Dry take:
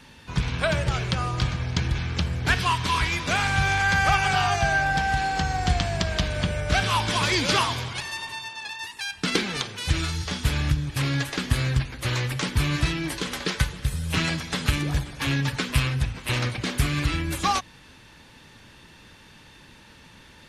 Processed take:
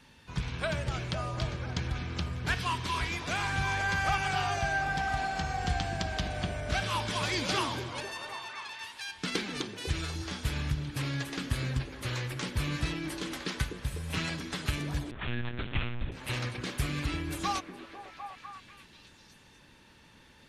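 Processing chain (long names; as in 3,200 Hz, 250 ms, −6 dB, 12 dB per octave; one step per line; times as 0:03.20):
echo through a band-pass that steps 249 ms, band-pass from 300 Hz, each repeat 0.7 octaves, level −2 dB
0:15.11–0:16.12: one-pitch LPC vocoder at 8 kHz 120 Hz
level −8.5 dB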